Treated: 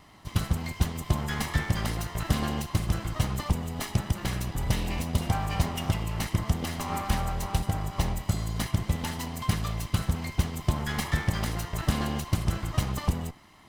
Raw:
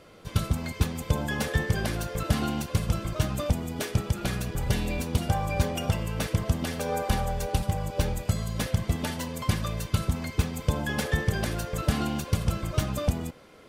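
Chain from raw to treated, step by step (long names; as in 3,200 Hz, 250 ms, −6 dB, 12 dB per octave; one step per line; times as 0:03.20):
lower of the sound and its delayed copy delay 1 ms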